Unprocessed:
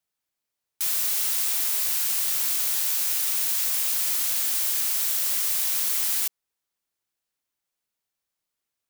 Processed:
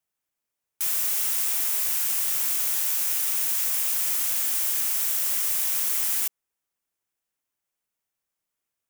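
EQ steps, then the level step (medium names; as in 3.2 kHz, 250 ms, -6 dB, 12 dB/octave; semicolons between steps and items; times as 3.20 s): peaking EQ 4.2 kHz -6 dB 0.62 oct; 0.0 dB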